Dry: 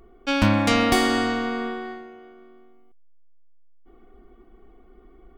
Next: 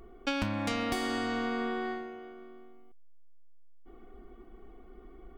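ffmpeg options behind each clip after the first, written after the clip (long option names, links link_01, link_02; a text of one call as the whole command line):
ffmpeg -i in.wav -af "acompressor=threshold=-28dB:ratio=16" out.wav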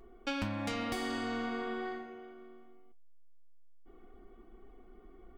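ffmpeg -i in.wav -af "flanger=delay=7.3:depth=4.3:regen=-58:speed=0.85:shape=triangular" out.wav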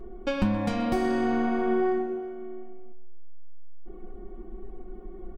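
ffmpeg -i in.wav -filter_complex "[0:a]tiltshelf=frequency=970:gain=7.5,aecho=1:1:5.5:0.62,asplit=2[link_01][link_02];[link_02]adelay=127,lowpass=frequency=4100:poles=1,volume=-13dB,asplit=2[link_03][link_04];[link_04]adelay=127,lowpass=frequency=4100:poles=1,volume=0.42,asplit=2[link_05][link_06];[link_06]adelay=127,lowpass=frequency=4100:poles=1,volume=0.42,asplit=2[link_07][link_08];[link_08]adelay=127,lowpass=frequency=4100:poles=1,volume=0.42[link_09];[link_01][link_03][link_05][link_07][link_09]amix=inputs=5:normalize=0,volume=5.5dB" out.wav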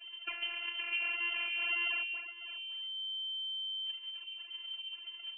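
ffmpeg -i in.wav -af "acrusher=samples=41:mix=1:aa=0.000001:lfo=1:lforange=65.6:lforate=1.8,lowpass=frequency=2600:width_type=q:width=0.5098,lowpass=frequency=2600:width_type=q:width=0.6013,lowpass=frequency=2600:width_type=q:width=0.9,lowpass=frequency=2600:width_type=q:width=2.563,afreqshift=-3100,afftfilt=real='hypot(re,im)*cos(PI*b)':imag='0':win_size=512:overlap=0.75,volume=-7.5dB" out.wav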